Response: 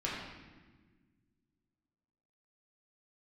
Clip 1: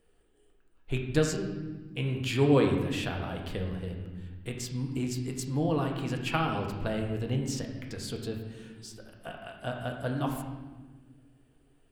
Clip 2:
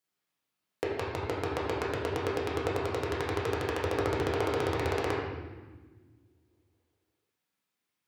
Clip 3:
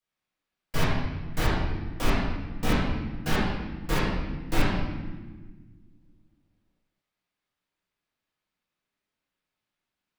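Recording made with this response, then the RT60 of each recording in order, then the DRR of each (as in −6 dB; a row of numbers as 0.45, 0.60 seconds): 2; 1.5, 1.5, 1.5 seconds; 1.5, −6.0, −10.5 decibels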